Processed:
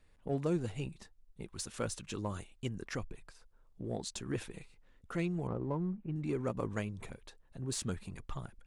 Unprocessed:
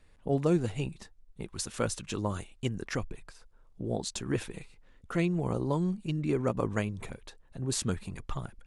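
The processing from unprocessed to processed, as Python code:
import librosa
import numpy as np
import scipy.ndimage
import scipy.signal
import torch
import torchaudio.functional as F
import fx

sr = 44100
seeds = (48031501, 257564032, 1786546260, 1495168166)

p1 = fx.lowpass(x, sr, hz=1800.0, slope=24, at=(5.47, 6.16))
p2 = np.clip(p1, -10.0 ** (-30.5 / 20.0), 10.0 ** (-30.5 / 20.0))
p3 = p1 + F.gain(torch.from_numpy(p2), -10.5).numpy()
y = F.gain(torch.from_numpy(p3), -7.5).numpy()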